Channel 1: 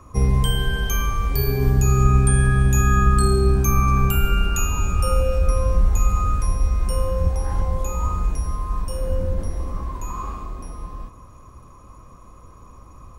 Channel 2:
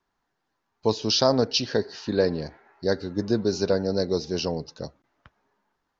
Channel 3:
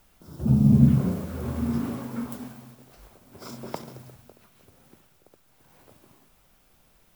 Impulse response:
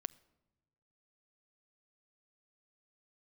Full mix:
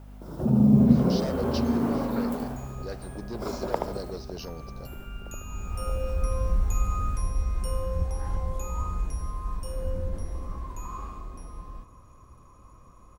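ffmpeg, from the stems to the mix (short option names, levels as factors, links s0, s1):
-filter_complex "[0:a]adelay=750,volume=0.422[s0];[1:a]asoftclip=type=hard:threshold=0.126,volume=0.251,asplit=2[s1][s2];[2:a]equalizer=f=590:t=o:w=2.9:g=14,aeval=exprs='val(0)+0.01*(sin(2*PI*50*n/s)+sin(2*PI*2*50*n/s)/2+sin(2*PI*3*50*n/s)/3+sin(2*PI*4*50*n/s)/4+sin(2*PI*5*50*n/s)/5)':c=same,volume=0.668,asplit=2[s3][s4];[s4]volume=0.473[s5];[s2]apad=whole_len=614488[s6];[s0][s6]sidechaincompress=threshold=0.002:ratio=8:attack=16:release=1200[s7];[s1][s3]amix=inputs=2:normalize=0,acompressor=threshold=0.0631:ratio=2,volume=1[s8];[s5]aecho=0:1:76:1[s9];[s7][s8][s9]amix=inputs=3:normalize=0"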